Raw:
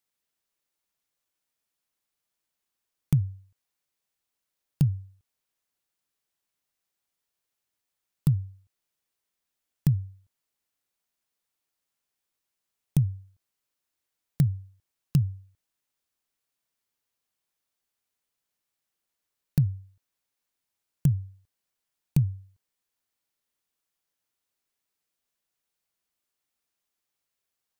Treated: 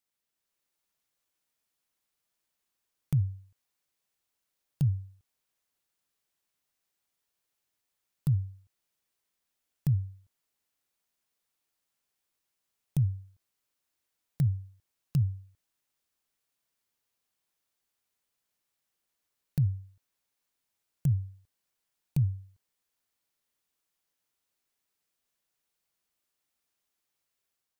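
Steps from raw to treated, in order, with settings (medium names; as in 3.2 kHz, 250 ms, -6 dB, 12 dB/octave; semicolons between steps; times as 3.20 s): level rider gain up to 4 dB; peak limiter -16.5 dBFS, peak gain reduction 9 dB; trim -3 dB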